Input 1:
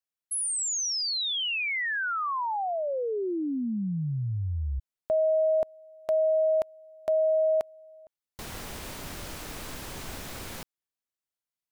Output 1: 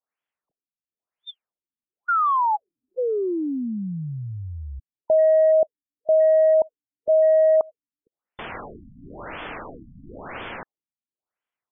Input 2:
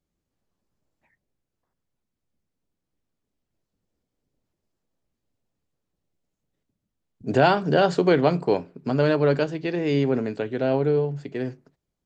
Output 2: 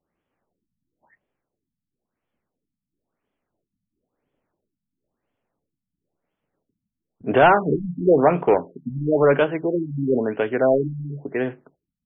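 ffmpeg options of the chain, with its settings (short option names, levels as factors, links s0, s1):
-filter_complex "[0:a]asplit=2[s0][s1];[s1]highpass=f=720:p=1,volume=7.08,asoftclip=type=tanh:threshold=0.631[s2];[s0][s2]amix=inputs=2:normalize=0,lowpass=f=2800:p=1,volume=0.501,afftfilt=real='re*lt(b*sr/1024,250*pow(3600/250,0.5+0.5*sin(2*PI*0.98*pts/sr)))':imag='im*lt(b*sr/1024,250*pow(3600/250,0.5+0.5*sin(2*PI*0.98*pts/sr)))':win_size=1024:overlap=0.75"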